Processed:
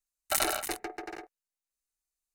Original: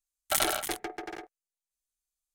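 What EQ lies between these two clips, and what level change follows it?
Butterworth band-stop 3.3 kHz, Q 7.3; peaking EQ 150 Hz -5 dB 0.61 oct; -1.0 dB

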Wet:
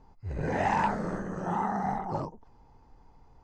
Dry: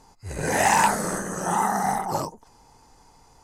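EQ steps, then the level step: distance through air 170 m; tilt EQ -2 dB/octave; -7.0 dB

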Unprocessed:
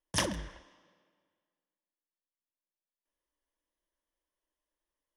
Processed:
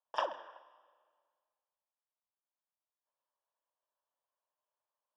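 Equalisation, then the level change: boxcar filter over 21 samples; high-pass 680 Hz 24 dB/octave; distance through air 150 m; +8.0 dB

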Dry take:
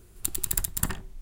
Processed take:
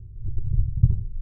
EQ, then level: four-pole ladder low-pass 430 Hz, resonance 25%; resonant low shelf 170 Hz +13.5 dB, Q 3; +3.5 dB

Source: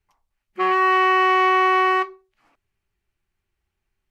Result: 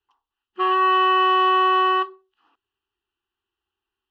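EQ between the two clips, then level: high-pass 290 Hz 6 dB/octave; resonant low-pass 2.9 kHz, resonance Q 4.7; static phaser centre 600 Hz, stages 6; 0.0 dB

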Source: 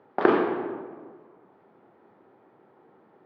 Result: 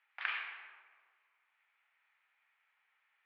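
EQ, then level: ladder high-pass 2.1 kHz, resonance 55%; distance through air 74 m; treble shelf 3.9 kHz -10.5 dB; +8.5 dB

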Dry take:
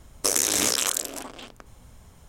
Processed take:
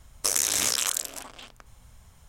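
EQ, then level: peaking EQ 330 Hz -9.5 dB 1.8 oct; -1.5 dB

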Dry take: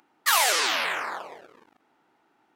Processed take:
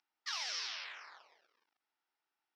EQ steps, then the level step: band-pass filter 5.5 kHz, Q 6.9; distance through air 330 m; +9.0 dB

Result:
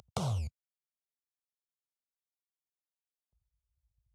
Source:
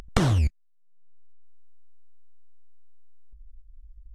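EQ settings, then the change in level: high-pass 92 Hz 24 dB/octave; static phaser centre 730 Hz, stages 4; -7.5 dB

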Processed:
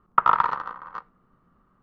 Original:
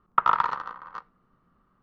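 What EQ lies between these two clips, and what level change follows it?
treble shelf 3.7 kHz -9.5 dB; +3.5 dB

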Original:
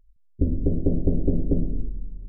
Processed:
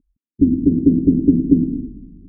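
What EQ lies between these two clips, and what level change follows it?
band-pass filter 360 Hz, Q 0.77; resonant low shelf 410 Hz +13 dB, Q 3; -5.0 dB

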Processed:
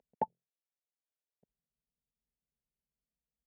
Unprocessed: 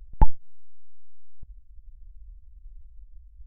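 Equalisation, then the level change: ladder band-pass 440 Hz, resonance 20%; tilt EQ +4.5 dB/octave; static phaser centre 320 Hz, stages 6; +16.5 dB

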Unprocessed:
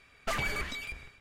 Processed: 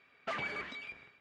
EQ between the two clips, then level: band-pass 190–3300 Hz; -4.0 dB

